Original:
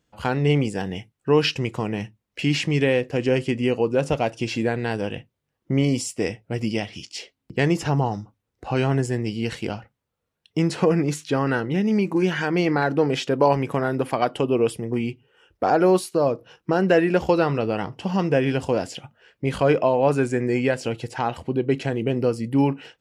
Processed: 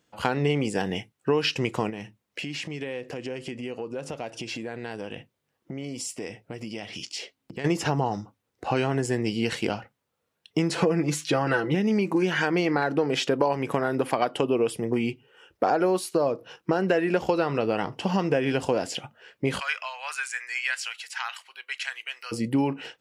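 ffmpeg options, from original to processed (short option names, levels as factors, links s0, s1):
-filter_complex "[0:a]asplit=3[s0][s1][s2];[s0]afade=t=out:st=1.89:d=0.02[s3];[s1]acompressor=threshold=0.02:ratio=5:attack=3.2:release=140:knee=1:detection=peak,afade=t=in:st=1.89:d=0.02,afade=t=out:st=7.64:d=0.02[s4];[s2]afade=t=in:st=7.64:d=0.02[s5];[s3][s4][s5]amix=inputs=3:normalize=0,asettb=1/sr,asplit=3[s6][s7][s8];[s6]atrim=end=10.754[s9];[s7]atrim=start=10.75:end=11.75,asetpts=PTS-STARTPTS,afade=t=in:d=0.004:c=qsin,afade=t=out:st=0.996:d=0.004:c=qsin,aecho=1:1:6:0.64,atrim=end_sample=44100[s10];[s8]atrim=start=11.746[s11];[s9][s10]acrossfade=d=0.004:c1=hsin:c2=qsin[s12];[s12][s11]acrossfade=d=0.004:c1=qsin:c2=hsin,asplit=3[s13][s14][s15];[s13]afade=t=out:st=19.59:d=0.02[s16];[s14]highpass=f=1400:w=0.5412,highpass=f=1400:w=1.3066,afade=t=in:st=19.59:d=0.02,afade=t=out:st=22.31:d=0.02[s17];[s15]afade=t=in:st=22.31:d=0.02[s18];[s16][s17][s18]amix=inputs=3:normalize=0,highpass=f=230:p=1,acompressor=threshold=0.0631:ratio=5,volume=1.58"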